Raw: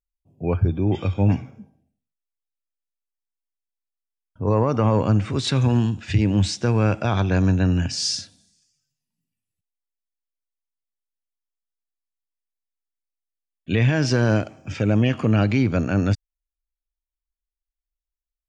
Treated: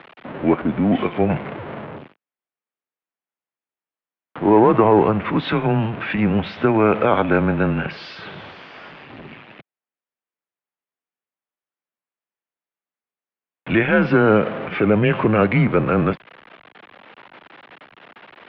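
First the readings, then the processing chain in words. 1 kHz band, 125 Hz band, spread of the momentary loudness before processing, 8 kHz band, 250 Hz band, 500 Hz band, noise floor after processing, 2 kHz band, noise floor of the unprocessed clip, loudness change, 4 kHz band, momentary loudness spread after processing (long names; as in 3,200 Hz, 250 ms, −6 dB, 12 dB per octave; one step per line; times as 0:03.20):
+9.0 dB, −3.5 dB, 6 LU, below −30 dB, +3.5 dB, +7.5 dB, below −85 dBFS, +7.0 dB, below −85 dBFS, +3.0 dB, −5.0 dB, 18 LU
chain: converter with a step at zero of −29 dBFS
three-way crossover with the lows and the highs turned down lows −22 dB, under 240 Hz, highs −12 dB, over 2,500 Hz
single-sideband voice off tune −110 Hz 240–3,500 Hz
level +9 dB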